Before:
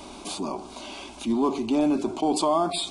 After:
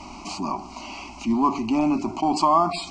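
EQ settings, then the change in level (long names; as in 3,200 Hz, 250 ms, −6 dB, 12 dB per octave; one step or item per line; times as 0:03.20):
high-frequency loss of the air 56 metres
dynamic equaliser 1,200 Hz, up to +4 dB, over −37 dBFS, Q 2
phaser with its sweep stopped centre 2,400 Hz, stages 8
+6.0 dB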